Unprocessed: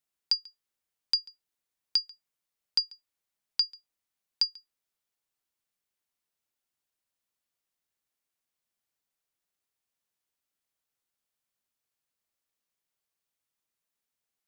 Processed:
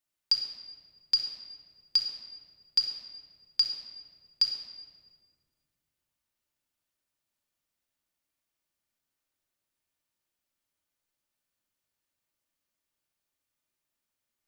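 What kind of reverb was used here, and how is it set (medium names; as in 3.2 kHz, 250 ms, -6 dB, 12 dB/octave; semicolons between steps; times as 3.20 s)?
simulated room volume 2500 m³, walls mixed, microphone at 2.6 m; trim -2 dB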